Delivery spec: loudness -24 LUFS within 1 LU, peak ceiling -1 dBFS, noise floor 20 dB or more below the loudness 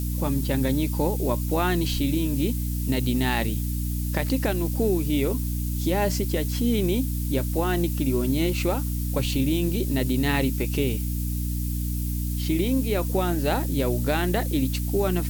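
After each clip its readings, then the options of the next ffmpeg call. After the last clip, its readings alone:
hum 60 Hz; harmonics up to 300 Hz; hum level -25 dBFS; noise floor -27 dBFS; noise floor target -45 dBFS; loudness -25.0 LUFS; peak -9.5 dBFS; loudness target -24.0 LUFS
-> -af "bandreject=f=60:t=h:w=6,bandreject=f=120:t=h:w=6,bandreject=f=180:t=h:w=6,bandreject=f=240:t=h:w=6,bandreject=f=300:t=h:w=6"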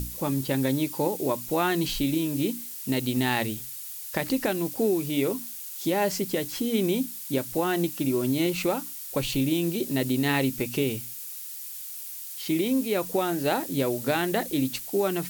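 hum none; noise floor -38 dBFS; noise floor target -47 dBFS
-> -af "afftdn=nr=9:nf=-38"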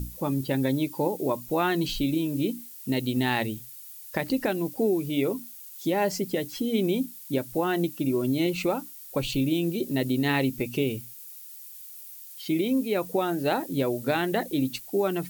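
noise floor -44 dBFS; noise floor target -48 dBFS
-> -af "afftdn=nr=6:nf=-44"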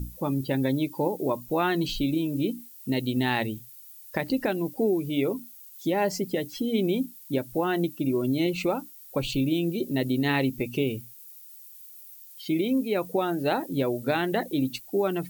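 noise floor -48 dBFS; loudness -27.5 LUFS; peak -11.5 dBFS; loudness target -24.0 LUFS
-> -af "volume=3.5dB"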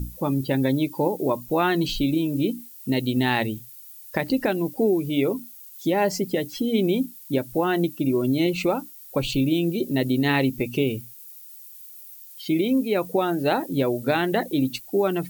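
loudness -24.0 LUFS; peak -8.0 dBFS; noise floor -44 dBFS

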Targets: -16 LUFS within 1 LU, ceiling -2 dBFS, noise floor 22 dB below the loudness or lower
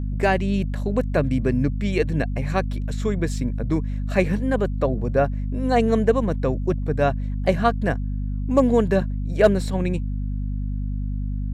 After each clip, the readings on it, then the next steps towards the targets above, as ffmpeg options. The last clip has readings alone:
hum 50 Hz; harmonics up to 250 Hz; hum level -23 dBFS; loudness -23.0 LUFS; peak -4.5 dBFS; loudness target -16.0 LUFS
-> -af "bandreject=f=50:t=h:w=4,bandreject=f=100:t=h:w=4,bandreject=f=150:t=h:w=4,bandreject=f=200:t=h:w=4,bandreject=f=250:t=h:w=4"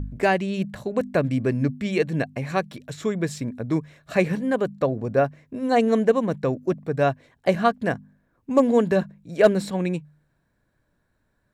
hum none; loudness -24.0 LUFS; peak -5.5 dBFS; loudness target -16.0 LUFS
-> -af "volume=8dB,alimiter=limit=-2dB:level=0:latency=1"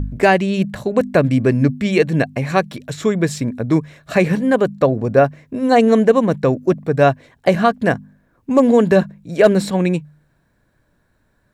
loudness -16.5 LUFS; peak -2.0 dBFS; noise floor -62 dBFS

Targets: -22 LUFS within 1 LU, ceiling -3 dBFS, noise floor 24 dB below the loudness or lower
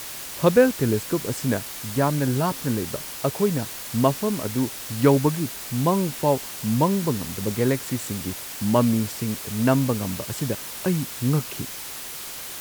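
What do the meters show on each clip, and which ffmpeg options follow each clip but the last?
noise floor -36 dBFS; noise floor target -48 dBFS; loudness -24.0 LUFS; peak -4.0 dBFS; loudness target -22.0 LUFS
-> -af "afftdn=nr=12:nf=-36"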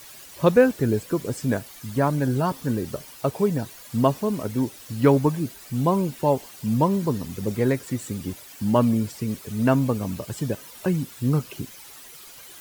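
noise floor -45 dBFS; noise floor target -48 dBFS
-> -af "afftdn=nr=6:nf=-45"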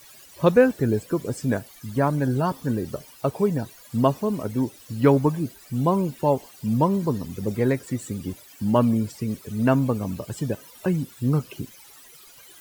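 noise floor -49 dBFS; loudness -24.5 LUFS; peak -4.5 dBFS; loudness target -22.0 LUFS
-> -af "volume=2.5dB,alimiter=limit=-3dB:level=0:latency=1"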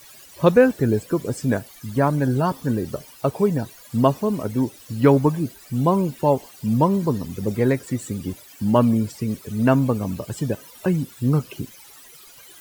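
loudness -22.0 LUFS; peak -3.0 dBFS; noise floor -46 dBFS

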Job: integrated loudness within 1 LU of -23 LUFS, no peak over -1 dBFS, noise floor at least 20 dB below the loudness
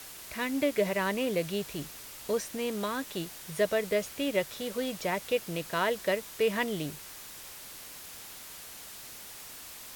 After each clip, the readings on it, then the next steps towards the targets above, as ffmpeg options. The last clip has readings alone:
noise floor -46 dBFS; noise floor target -52 dBFS; loudness -31.5 LUFS; peak -15.0 dBFS; loudness target -23.0 LUFS
-> -af "afftdn=nr=6:nf=-46"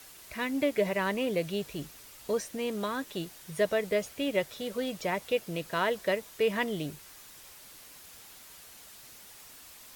noise floor -51 dBFS; noise floor target -52 dBFS
-> -af "afftdn=nr=6:nf=-51"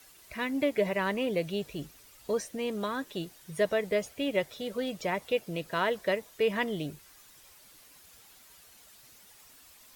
noise floor -57 dBFS; loudness -31.5 LUFS; peak -15.5 dBFS; loudness target -23.0 LUFS
-> -af "volume=8.5dB"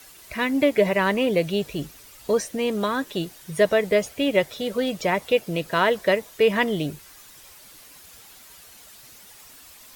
loudness -23.0 LUFS; peak -7.0 dBFS; noise floor -48 dBFS

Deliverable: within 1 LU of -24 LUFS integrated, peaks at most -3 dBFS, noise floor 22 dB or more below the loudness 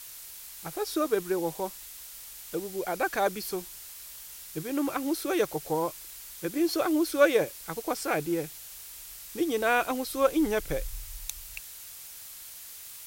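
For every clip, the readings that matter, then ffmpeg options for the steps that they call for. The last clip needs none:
noise floor -45 dBFS; noise floor target -52 dBFS; loudness -29.5 LUFS; peak -9.0 dBFS; loudness target -24.0 LUFS
-> -af "afftdn=nr=7:nf=-45"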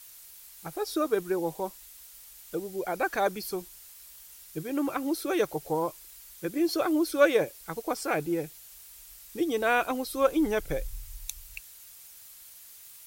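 noise floor -50 dBFS; noise floor target -52 dBFS
-> -af "afftdn=nr=6:nf=-50"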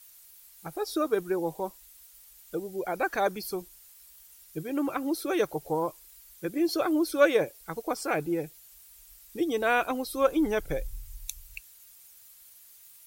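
noise floor -54 dBFS; loudness -29.5 LUFS; peak -9.0 dBFS; loudness target -24.0 LUFS
-> -af "volume=5.5dB"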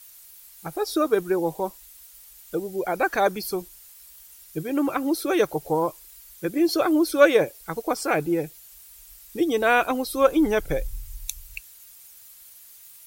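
loudness -24.0 LUFS; peak -3.5 dBFS; noise floor -49 dBFS

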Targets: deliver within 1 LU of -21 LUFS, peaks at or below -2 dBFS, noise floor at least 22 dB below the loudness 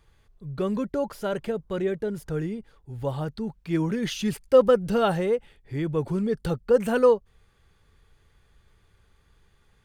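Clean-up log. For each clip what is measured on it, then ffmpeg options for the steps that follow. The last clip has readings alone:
loudness -25.5 LUFS; peak -7.0 dBFS; loudness target -21.0 LUFS
-> -af "volume=4.5dB"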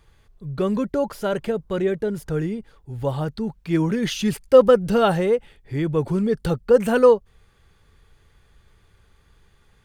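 loudness -21.0 LUFS; peak -2.5 dBFS; noise floor -58 dBFS

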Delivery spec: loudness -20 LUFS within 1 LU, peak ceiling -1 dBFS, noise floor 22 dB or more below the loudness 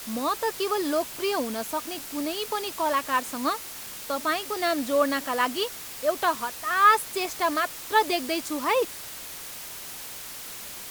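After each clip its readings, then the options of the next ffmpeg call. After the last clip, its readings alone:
noise floor -39 dBFS; noise floor target -49 dBFS; loudness -27.0 LUFS; peak -8.5 dBFS; loudness target -20.0 LUFS
-> -af "afftdn=nr=10:nf=-39"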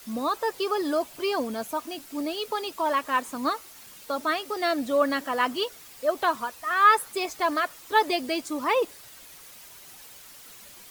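noise floor -48 dBFS; noise floor target -49 dBFS
-> -af "afftdn=nr=6:nf=-48"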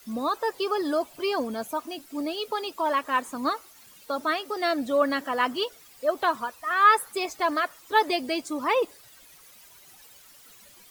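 noise floor -53 dBFS; loudness -26.5 LUFS; peak -8.5 dBFS; loudness target -20.0 LUFS
-> -af "volume=6.5dB"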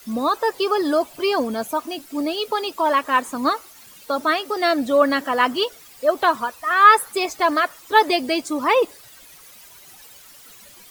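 loudness -20.0 LUFS; peak -2.0 dBFS; noise floor -46 dBFS

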